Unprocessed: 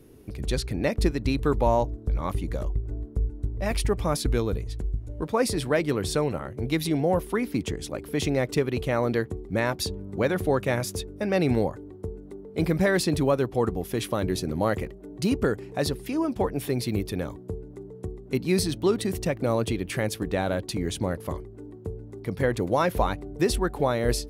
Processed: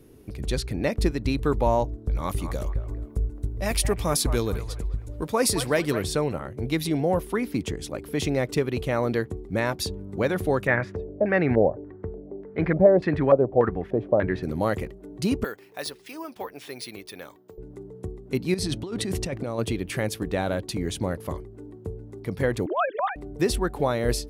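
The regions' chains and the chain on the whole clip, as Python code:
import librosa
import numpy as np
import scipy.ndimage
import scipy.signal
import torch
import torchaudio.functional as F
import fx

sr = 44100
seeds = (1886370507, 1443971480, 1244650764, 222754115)

y = fx.chain(x, sr, fx.high_shelf(hz=4200.0, db=10.0),
    fx.echo_wet_bandpass(ms=215, feedback_pct=33, hz=1100.0, wet_db=-9.0), at=(2.14, 6.03))
y = fx.chain(y, sr, fx.highpass(hz=45.0, slope=12),
    fx.filter_lfo_lowpass(shape='square', hz=1.7, low_hz=630.0, high_hz=1800.0, q=3.4), at=(10.67, 14.43))
y = fx.chain(y, sr, fx.highpass(hz=1400.0, slope=6),
    fx.resample_bad(factor=3, down='filtered', up='hold'), at=(15.44, 17.58))
y = fx.chain(y, sr, fx.lowpass(hz=10000.0, slope=12),
    fx.over_compress(threshold_db=-29.0, ratio=-1.0), at=(18.54, 19.59))
y = fx.chain(y, sr, fx.sine_speech(),
    fx.over_compress(threshold_db=-23.0, ratio=-0.5), at=(22.66, 23.16))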